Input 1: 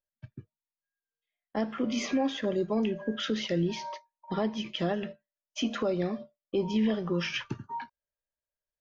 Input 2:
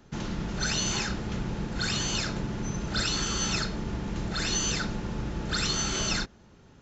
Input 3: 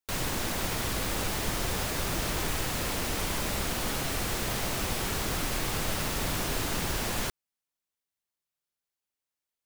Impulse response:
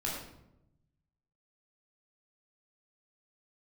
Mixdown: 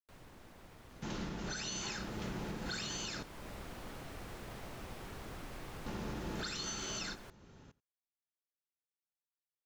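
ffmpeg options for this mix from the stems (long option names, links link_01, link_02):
-filter_complex "[1:a]adelay=900,volume=-3dB,asplit=3[link_01][link_02][link_03];[link_01]atrim=end=3.23,asetpts=PTS-STARTPTS,afade=type=out:start_time=3.226:duration=0.004:curve=hsin[link_04];[link_02]atrim=start=3.23:end=5.86,asetpts=PTS-STARTPTS,volume=0[link_05];[link_03]atrim=start=5.86,asetpts=PTS-STARTPTS,afade=type=in:duration=0.004:curve=hsin[link_06];[link_04][link_05][link_06]concat=n=3:v=0:a=1,asplit=2[link_07][link_08];[link_08]volume=-22.5dB[link_09];[2:a]highshelf=frequency=3100:gain=-11.5,volume=-14dB,afade=type=in:start_time=1.73:duration=0.3:silence=0.334965[link_10];[link_09]aecho=0:1:86:1[link_11];[link_07][link_10][link_11]amix=inputs=3:normalize=0,acrossover=split=200|3000[link_12][link_13][link_14];[link_12]acompressor=threshold=-44dB:ratio=2.5[link_15];[link_15][link_13][link_14]amix=inputs=3:normalize=0,alimiter=level_in=6.5dB:limit=-24dB:level=0:latency=1:release=399,volume=-6.5dB"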